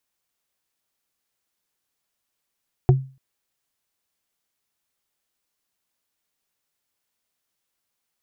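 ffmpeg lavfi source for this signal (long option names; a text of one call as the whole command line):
ffmpeg -f lavfi -i "aevalsrc='0.398*pow(10,-3*t/0.35)*sin(2*PI*133*t)+0.224*pow(10,-3*t/0.104)*sin(2*PI*366.7*t)+0.126*pow(10,-3*t/0.046)*sin(2*PI*718.7*t)':duration=0.29:sample_rate=44100" out.wav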